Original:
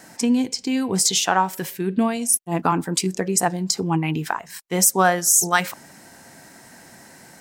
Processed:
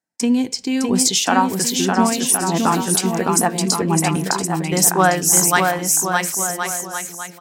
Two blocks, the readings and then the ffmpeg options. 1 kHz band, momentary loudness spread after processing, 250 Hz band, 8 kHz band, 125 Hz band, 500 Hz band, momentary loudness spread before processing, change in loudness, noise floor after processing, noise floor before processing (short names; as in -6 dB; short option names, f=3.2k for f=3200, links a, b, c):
+4.0 dB, 8 LU, +4.0 dB, +4.0 dB, +4.0 dB, +4.0 dB, 10 LU, +3.0 dB, -37 dBFS, -47 dBFS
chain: -af "agate=range=-43dB:threshold=-35dB:ratio=16:detection=peak,aecho=1:1:610|1068|1411|1668|1861:0.631|0.398|0.251|0.158|0.1,volume=2dB"